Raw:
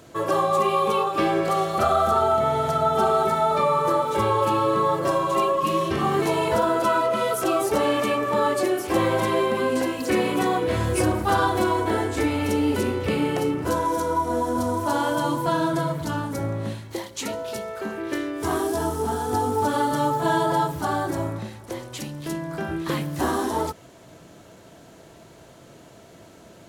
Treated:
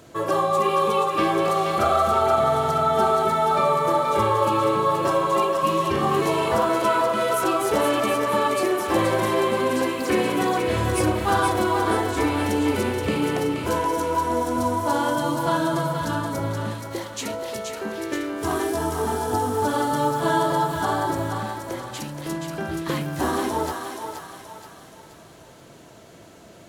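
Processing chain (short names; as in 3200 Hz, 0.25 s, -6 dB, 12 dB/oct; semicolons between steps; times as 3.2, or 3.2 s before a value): thinning echo 0.476 s, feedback 48%, high-pass 640 Hz, level -4.5 dB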